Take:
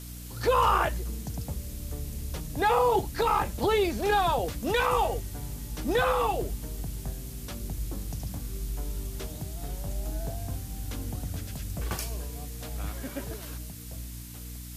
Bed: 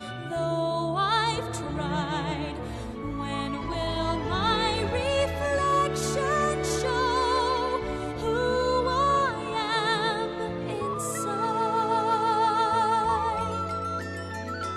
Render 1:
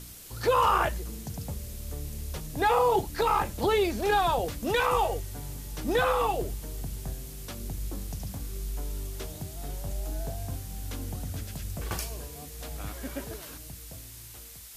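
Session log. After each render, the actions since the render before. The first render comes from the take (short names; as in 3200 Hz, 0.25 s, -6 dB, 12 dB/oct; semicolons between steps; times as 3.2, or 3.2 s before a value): de-hum 60 Hz, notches 5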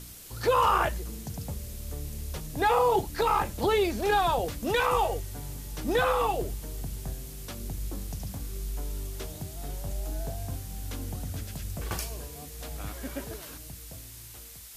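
nothing audible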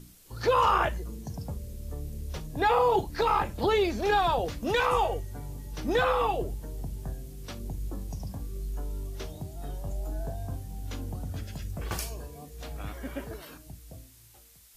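noise print and reduce 10 dB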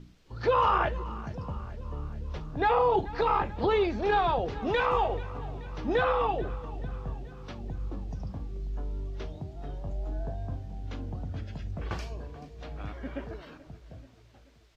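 air absorption 200 m; feedback echo 0.433 s, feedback 59%, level -18 dB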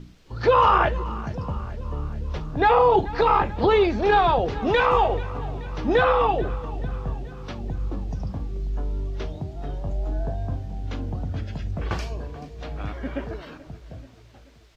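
gain +7 dB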